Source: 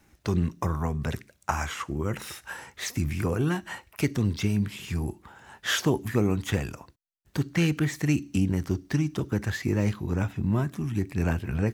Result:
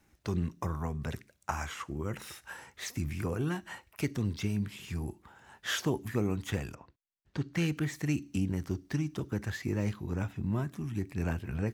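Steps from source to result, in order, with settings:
0:06.74–0:07.52: low-pass filter 3,100 Hz → 5,500 Hz 12 dB per octave
level −6.5 dB

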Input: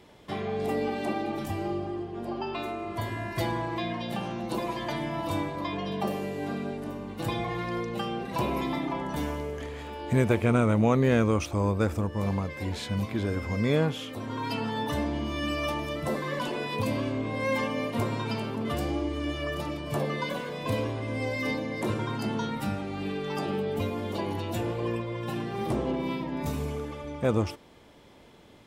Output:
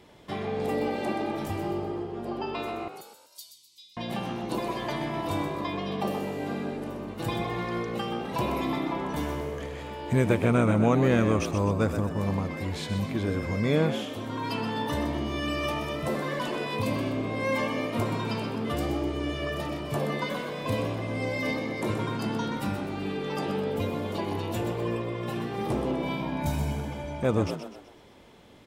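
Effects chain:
0:02.88–0:03.97: inverse Chebyshev high-pass filter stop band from 1,800 Hz, stop band 50 dB
0:26.03–0:27.23: comb filter 1.3 ms, depth 79%
echo with shifted repeats 126 ms, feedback 42%, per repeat +63 Hz, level −9 dB

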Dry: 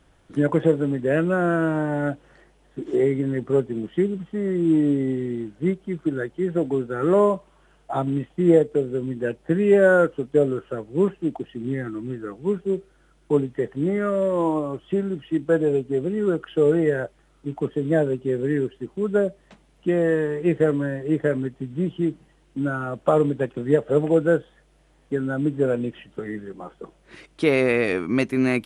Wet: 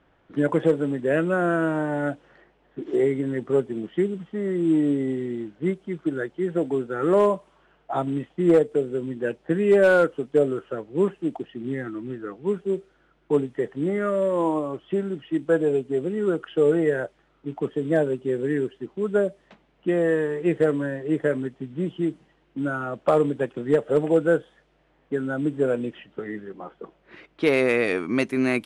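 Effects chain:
low-pass that shuts in the quiet parts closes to 2,500 Hz, open at −18.5 dBFS
low-shelf EQ 120 Hz −11.5 dB
hard clipping −10 dBFS, distortion −28 dB

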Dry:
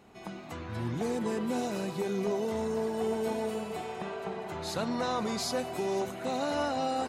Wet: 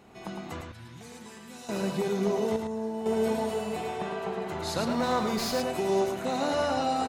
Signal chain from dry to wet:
0:00.61–0:01.69: guitar amp tone stack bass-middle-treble 5-5-5
0:02.56–0:03.06: tuned comb filter 110 Hz, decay 1 s, harmonics all, mix 80%
single-tap delay 108 ms −5 dB
0:04.89–0:05.61: windowed peak hold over 3 samples
level +2.5 dB

